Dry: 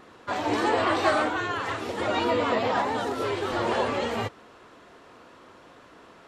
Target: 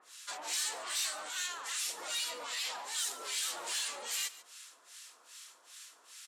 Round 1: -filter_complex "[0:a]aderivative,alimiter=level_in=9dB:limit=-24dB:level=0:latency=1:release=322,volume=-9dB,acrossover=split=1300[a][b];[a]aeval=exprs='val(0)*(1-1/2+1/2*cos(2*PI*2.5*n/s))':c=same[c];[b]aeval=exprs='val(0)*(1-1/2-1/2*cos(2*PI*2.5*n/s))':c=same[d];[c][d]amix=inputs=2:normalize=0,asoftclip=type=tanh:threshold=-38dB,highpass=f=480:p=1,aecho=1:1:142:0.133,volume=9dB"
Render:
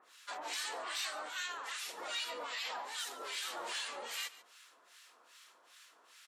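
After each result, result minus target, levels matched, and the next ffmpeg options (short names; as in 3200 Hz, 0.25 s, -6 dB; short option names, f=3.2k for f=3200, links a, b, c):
soft clip: distortion -11 dB; 8000 Hz band -5.5 dB
-filter_complex "[0:a]aderivative,alimiter=level_in=9dB:limit=-24dB:level=0:latency=1:release=322,volume=-9dB,acrossover=split=1300[a][b];[a]aeval=exprs='val(0)*(1-1/2+1/2*cos(2*PI*2.5*n/s))':c=same[c];[b]aeval=exprs='val(0)*(1-1/2-1/2*cos(2*PI*2.5*n/s))':c=same[d];[c][d]amix=inputs=2:normalize=0,asoftclip=type=tanh:threshold=-47dB,highpass=f=480:p=1,aecho=1:1:142:0.133,volume=9dB"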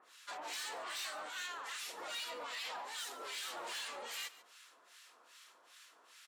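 8000 Hz band -5.5 dB
-filter_complex "[0:a]aderivative,alimiter=level_in=9dB:limit=-24dB:level=0:latency=1:release=322,volume=-9dB,acrossover=split=1300[a][b];[a]aeval=exprs='val(0)*(1-1/2+1/2*cos(2*PI*2.5*n/s))':c=same[c];[b]aeval=exprs='val(0)*(1-1/2-1/2*cos(2*PI*2.5*n/s))':c=same[d];[c][d]amix=inputs=2:normalize=0,asoftclip=type=tanh:threshold=-47dB,highpass=f=480:p=1,equalizer=f=8.3k:t=o:w=2:g=13,aecho=1:1:142:0.133,volume=9dB"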